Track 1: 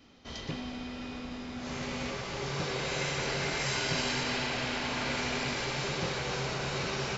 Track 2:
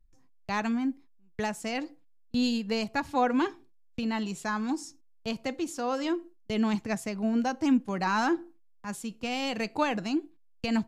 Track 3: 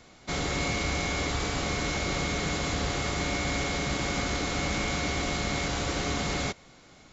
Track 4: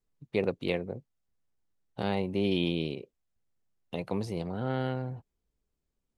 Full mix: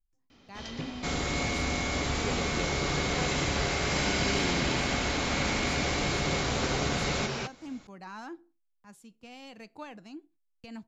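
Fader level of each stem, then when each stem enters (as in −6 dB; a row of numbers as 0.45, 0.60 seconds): −0.5, −16.0, −1.5, −8.0 decibels; 0.30, 0.00, 0.75, 1.90 seconds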